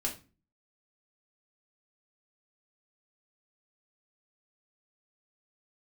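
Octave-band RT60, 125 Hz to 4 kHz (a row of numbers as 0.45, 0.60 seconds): 0.55, 0.55, 0.35, 0.30, 0.30, 0.25 seconds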